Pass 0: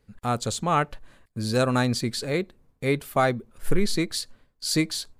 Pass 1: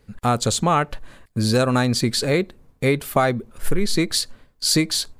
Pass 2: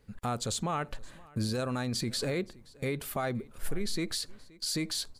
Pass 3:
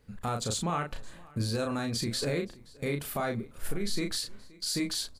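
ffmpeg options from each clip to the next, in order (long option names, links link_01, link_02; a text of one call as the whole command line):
ffmpeg -i in.wav -af "acompressor=threshold=-24dB:ratio=4,volume=9dB" out.wav
ffmpeg -i in.wav -af "alimiter=limit=-16.5dB:level=0:latency=1:release=57,aecho=1:1:524:0.0668,volume=-7dB" out.wav
ffmpeg -i in.wav -filter_complex "[0:a]asplit=2[link_01][link_02];[link_02]adelay=35,volume=-5dB[link_03];[link_01][link_03]amix=inputs=2:normalize=0" out.wav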